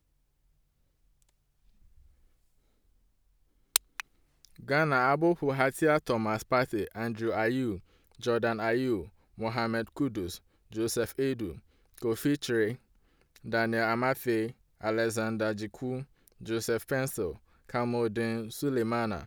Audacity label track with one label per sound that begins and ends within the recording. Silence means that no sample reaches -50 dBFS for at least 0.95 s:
1.220000	2.000000	sound